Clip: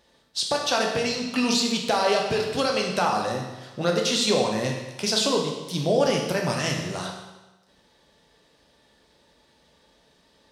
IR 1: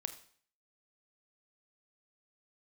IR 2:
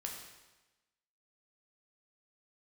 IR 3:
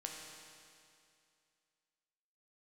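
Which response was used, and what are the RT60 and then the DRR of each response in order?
2; 0.50 s, 1.1 s, 2.4 s; 8.5 dB, 0.0 dB, -0.5 dB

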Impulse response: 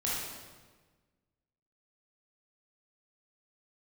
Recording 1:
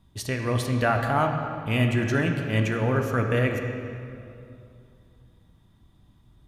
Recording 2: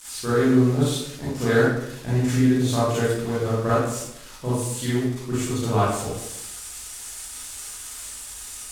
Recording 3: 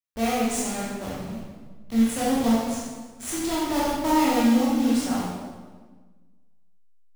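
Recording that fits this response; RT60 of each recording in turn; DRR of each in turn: 3; 2.6 s, 0.85 s, 1.4 s; 2.5 dB, -10.5 dB, -7.5 dB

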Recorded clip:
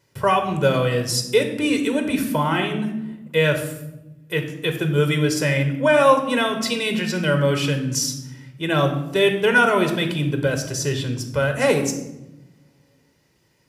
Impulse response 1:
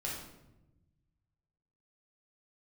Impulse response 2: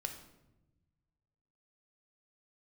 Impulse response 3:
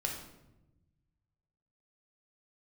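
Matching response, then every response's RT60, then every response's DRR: 2; 0.95 s, 1.0 s, 0.95 s; -4.5 dB, 5.0 dB, 0.5 dB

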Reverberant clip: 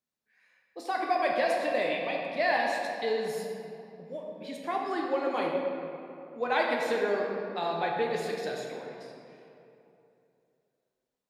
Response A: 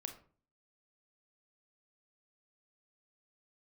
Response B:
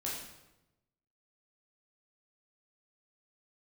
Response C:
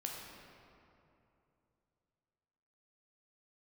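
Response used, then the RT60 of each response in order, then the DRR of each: C; 0.45 s, 0.95 s, 2.8 s; 5.5 dB, -5.5 dB, -1.0 dB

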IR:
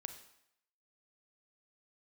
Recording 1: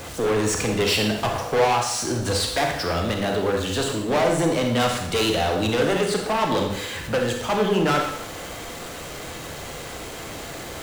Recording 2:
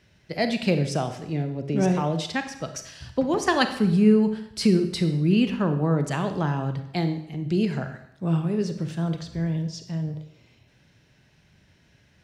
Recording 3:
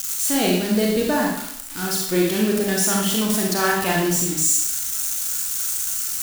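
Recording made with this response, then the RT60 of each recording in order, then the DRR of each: 2; 0.75 s, 0.75 s, 0.75 s; 1.5 dB, 7.5 dB, -2.5 dB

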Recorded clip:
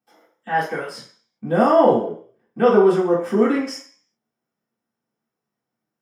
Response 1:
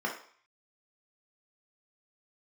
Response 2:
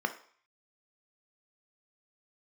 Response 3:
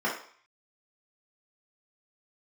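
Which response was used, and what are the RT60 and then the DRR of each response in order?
3; 0.50 s, 0.50 s, 0.50 s; -3.0 dB, 6.0 dB, -8.0 dB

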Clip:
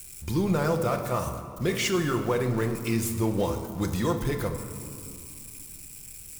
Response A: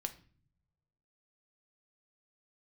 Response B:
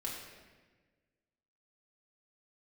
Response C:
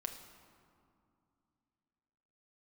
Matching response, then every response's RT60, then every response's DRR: C; no single decay rate, 1.4 s, 2.5 s; 7.0 dB, -4.0 dB, 4.0 dB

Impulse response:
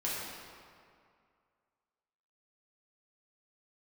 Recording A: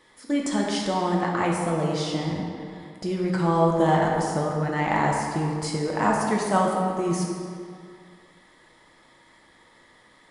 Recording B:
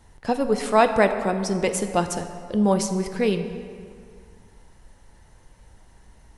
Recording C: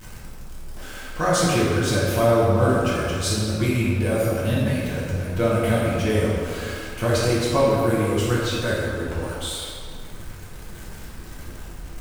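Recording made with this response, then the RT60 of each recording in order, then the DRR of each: C; 2.2 s, 2.2 s, 2.2 s; -2.0 dB, 7.0 dB, -8.0 dB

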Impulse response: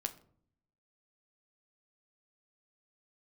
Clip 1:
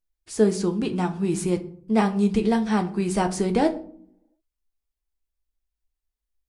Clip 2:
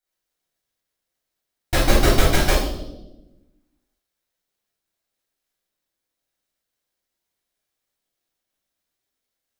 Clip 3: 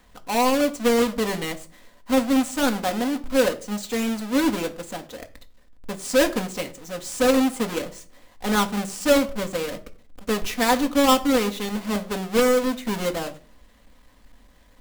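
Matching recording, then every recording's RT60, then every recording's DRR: 1; 0.55 s, 1.0 s, 0.40 s; 6.5 dB, -10.5 dB, 5.0 dB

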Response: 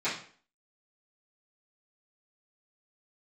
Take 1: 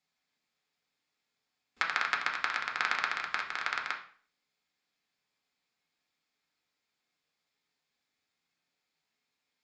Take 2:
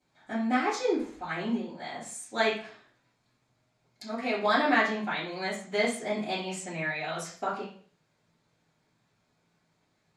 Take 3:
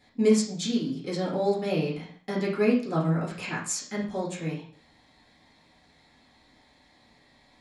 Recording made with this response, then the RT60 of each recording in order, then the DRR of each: 2; 0.45 s, 0.45 s, 0.45 s; 0.0 dB, -15.5 dB, -7.0 dB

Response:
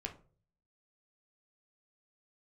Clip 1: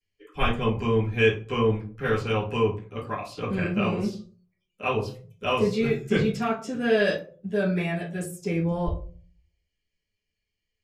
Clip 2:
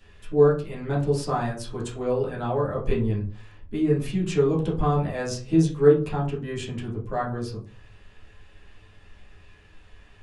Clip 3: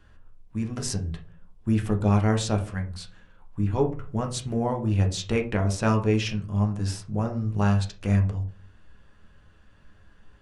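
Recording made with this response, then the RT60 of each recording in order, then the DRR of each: 3; 0.40 s, 0.40 s, 0.45 s; -16.0 dB, -7.5 dB, 2.0 dB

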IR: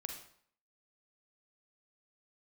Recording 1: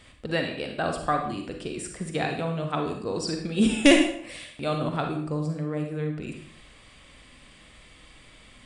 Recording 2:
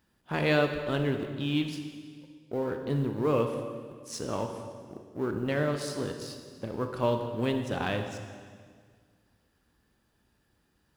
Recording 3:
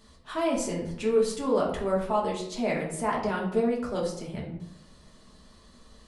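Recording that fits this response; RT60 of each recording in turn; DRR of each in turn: 1; 0.60 s, 1.8 s, 0.75 s; 3.5 dB, 5.0 dB, -3.5 dB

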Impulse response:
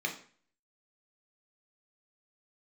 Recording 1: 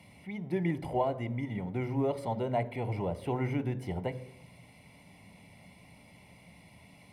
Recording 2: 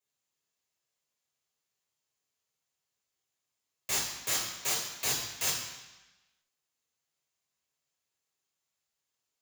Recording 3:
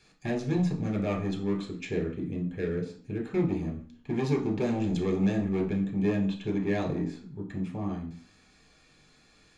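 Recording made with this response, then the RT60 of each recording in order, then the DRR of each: 3; 0.65 s, 1.0 s, 0.45 s; 15.0 dB, -3.0 dB, 1.0 dB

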